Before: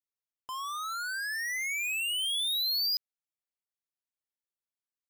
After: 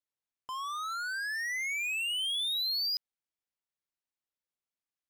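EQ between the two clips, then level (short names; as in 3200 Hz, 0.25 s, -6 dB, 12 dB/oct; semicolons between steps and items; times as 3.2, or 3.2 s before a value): high shelf 8400 Hz -10.5 dB; 0.0 dB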